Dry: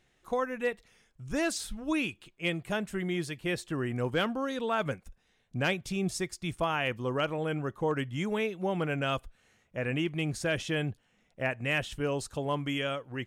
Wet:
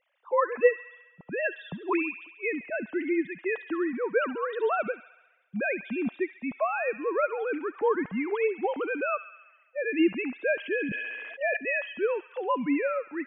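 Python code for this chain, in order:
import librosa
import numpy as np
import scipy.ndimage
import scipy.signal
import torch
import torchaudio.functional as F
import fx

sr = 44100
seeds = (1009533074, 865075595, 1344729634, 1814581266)

y = fx.sine_speech(x, sr)
y = fx.echo_wet_highpass(y, sr, ms=68, feedback_pct=67, hz=1800.0, wet_db=-10.5)
y = fx.sustainer(y, sr, db_per_s=25.0, at=(10.76, 11.57))
y = y * librosa.db_to_amplitude(3.0)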